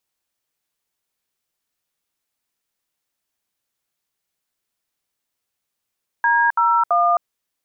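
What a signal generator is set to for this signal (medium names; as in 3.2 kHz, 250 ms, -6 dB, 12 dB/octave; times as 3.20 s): DTMF "D01", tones 264 ms, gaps 69 ms, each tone -16 dBFS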